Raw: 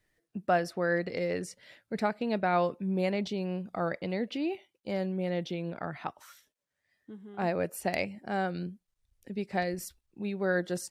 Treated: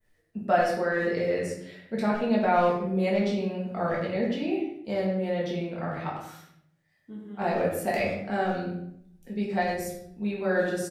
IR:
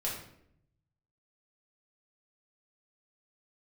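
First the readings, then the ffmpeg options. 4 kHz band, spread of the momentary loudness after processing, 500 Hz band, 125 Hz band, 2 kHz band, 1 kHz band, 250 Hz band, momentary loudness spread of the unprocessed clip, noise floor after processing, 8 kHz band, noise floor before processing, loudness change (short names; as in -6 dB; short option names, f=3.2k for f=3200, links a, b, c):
+2.0 dB, 14 LU, +5.0 dB, +3.0 dB, +3.5 dB, +5.0 dB, +4.5 dB, 12 LU, -70 dBFS, +1.0 dB, -84 dBFS, +4.5 dB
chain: -filter_complex "[0:a]adynamicequalizer=threshold=0.00251:dfrequency=4400:dqfactor=0.78:tfrequency=4400:tqfactor=0.78:attack=5:release=100:ratio=0.375:range=2:mode=cutabove:tftype=bell,asplit=2[a][b];[b]adelay=100,highpass=300,lowpass=3.4k,asoftclip=type=hard:threshold=-24.5dB,volume=-8dB[c];[a][c]amix=inputs=2:normalize=0[d];[1:a]atrim=start_sample=2205[e];[d][e]afir=irnorm=-1:irlink=0"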